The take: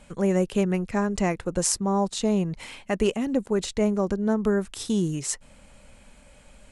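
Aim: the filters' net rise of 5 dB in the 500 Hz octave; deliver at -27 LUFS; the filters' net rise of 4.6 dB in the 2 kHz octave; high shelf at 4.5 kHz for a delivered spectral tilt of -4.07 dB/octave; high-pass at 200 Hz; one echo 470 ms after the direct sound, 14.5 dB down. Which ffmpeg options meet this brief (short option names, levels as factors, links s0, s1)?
-af "highpass=200,equalizer=f=500:t=o:g=6.5,equalizer=f=2000:t=o:g=4.5,highshelf=f=4500:g=4,aecho=1:1:470:0.188,volume=0.631"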